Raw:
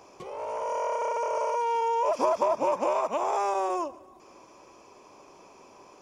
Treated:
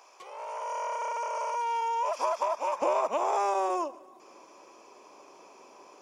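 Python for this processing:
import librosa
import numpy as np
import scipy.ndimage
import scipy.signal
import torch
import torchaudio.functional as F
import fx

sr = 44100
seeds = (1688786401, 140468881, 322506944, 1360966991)

y = fx.highpass(x, sr, hz=fx.steps((0.0, 830.0), (2.82, 280.0)), slope=12)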